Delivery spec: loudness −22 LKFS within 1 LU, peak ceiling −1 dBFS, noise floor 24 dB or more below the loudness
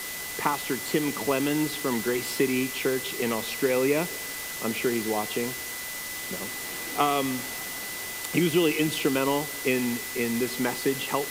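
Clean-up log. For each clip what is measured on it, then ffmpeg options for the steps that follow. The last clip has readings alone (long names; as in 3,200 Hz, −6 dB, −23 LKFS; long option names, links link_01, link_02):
interfering tone 2,000 Hz; level of the tone −38 dBFS; background noise floor −35 dBFS; target noise floor −51 dBFS; integrated loudness −27.0 LKFS; sample peak −9.0 dBFS; target loudness −22.0 LKFS
→ -af "bandreject=frequency=2000:width=30"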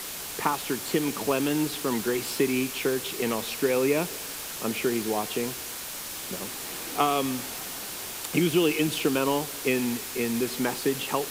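interfering tone none found; background noise floor −37 dBFS; target noise floor −52 dBFS
→ -af "afftdn=noise_reduction=15:noise_floor=-37"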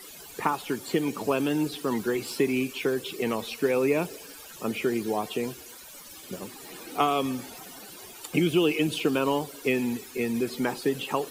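background noise floor −46 dBFS; target noise floor −52 dBFS
→ -af "afftdn=noise_reduction=6:noise_floor=-46"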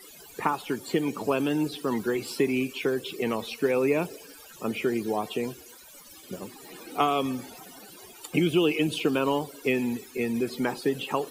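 background noise floor −49 dBFS; target noise floor −52 dBFS
→ -af "afftdn=noise_reduction=6:noise_floor=-49"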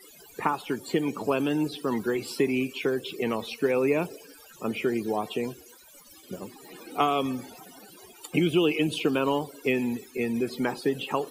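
background noise floor −52 dBFS; integrated loudness −28.0 LKFS; sample peak −9.0 dBFS; target loudness −22.0 LKFS
→ -af "volume=6dB"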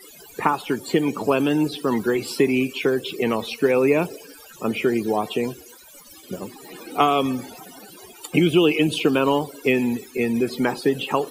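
integrated loudness −22.0 LKFS; sample peak −3.0 dBFS; background noise floor −46 dBFS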